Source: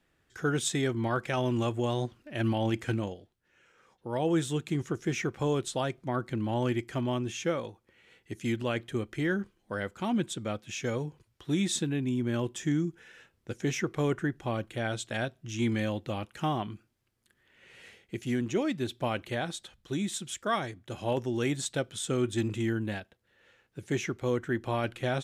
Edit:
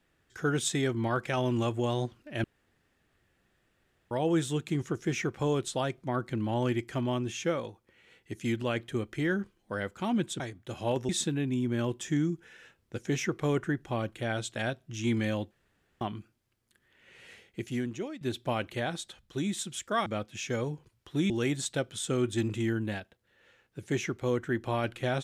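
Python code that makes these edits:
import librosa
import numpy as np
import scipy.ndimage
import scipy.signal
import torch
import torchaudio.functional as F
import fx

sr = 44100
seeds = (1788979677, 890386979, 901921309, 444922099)

y = fx.edit(x, sr, fx.room_tone_fill(start_s=2.44, length_s=1.67),
    fx.swap(start_s=10.4, length_s=1.24, other_s=20.61, other_length_s=0.69),
    fx.room_tone_fill(start_s=16.06, length_s=0.5),
    fx.fade_out_to(start_s=18.17, length_s=0.59, floor_db=-16.0), tone=tone)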